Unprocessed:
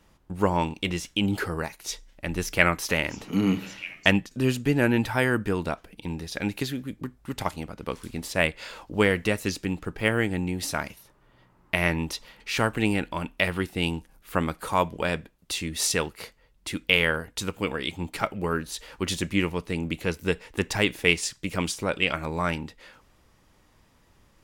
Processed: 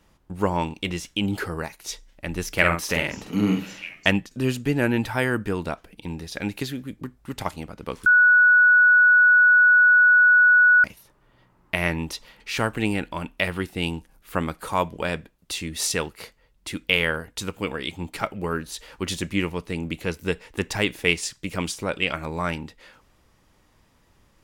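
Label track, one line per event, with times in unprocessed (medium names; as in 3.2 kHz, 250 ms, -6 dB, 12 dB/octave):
2.520000	3.890000	doubling 48 ms -4.5 dB
8.060000	10.840000	bleep 1.47 kHz -11.5 dBFS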